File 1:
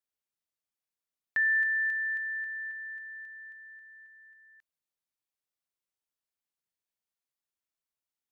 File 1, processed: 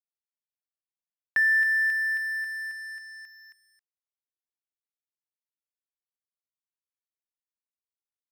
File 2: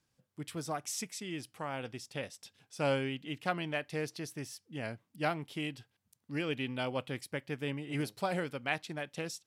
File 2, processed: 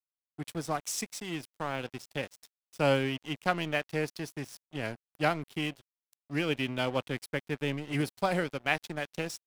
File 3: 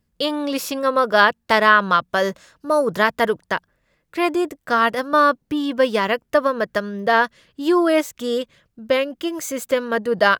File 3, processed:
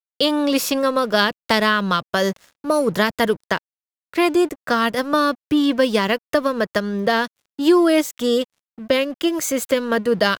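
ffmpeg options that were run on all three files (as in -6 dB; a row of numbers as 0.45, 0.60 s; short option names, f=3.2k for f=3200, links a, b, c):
-filter_complex "[0:a]acrossover=split=340|3000[a][b][c];[b]acompressor=threshold=-25dB:ratio=4[d];[a][d][c]amix=inputs=3:normalize=0,aeval=exprs='sgn(val(0))*max(abs(val(0))-0.00422,0)':c=same,volume=6dB"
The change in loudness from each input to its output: +5.0, +4.5, 0.0 LU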